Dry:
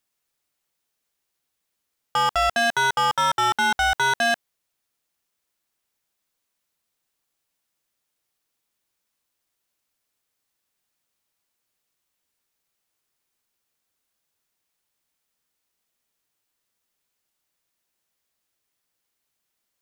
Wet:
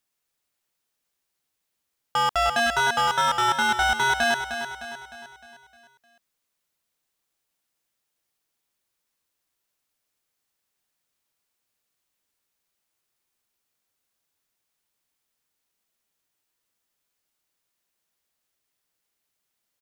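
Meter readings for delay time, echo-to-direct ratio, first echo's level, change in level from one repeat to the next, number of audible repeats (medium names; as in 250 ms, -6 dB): 306 ms, -8.0 dB, -9.0 dB, -6.0 dB, 5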